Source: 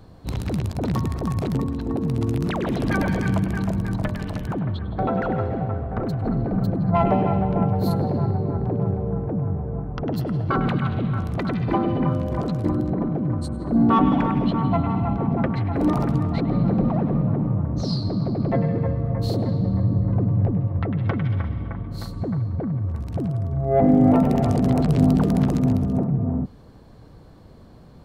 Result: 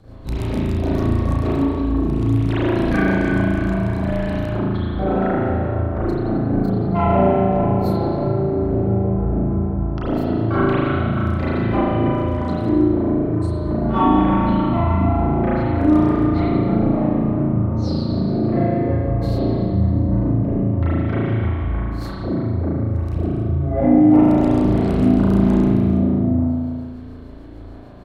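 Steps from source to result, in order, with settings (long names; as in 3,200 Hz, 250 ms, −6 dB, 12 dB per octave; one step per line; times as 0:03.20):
double-tracking delay 33 ms −3 dB
rotating-speaker cabinet horn 6.7 Hz
spring reverb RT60 1.5 s, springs 36 ms, chirp 55 ms, DRR −9 dB
in parallel at +2 dB: downward compressor, threshold −19 dBFS, peak gain reduction 15.5 dB
on the sum: level −7.5 dB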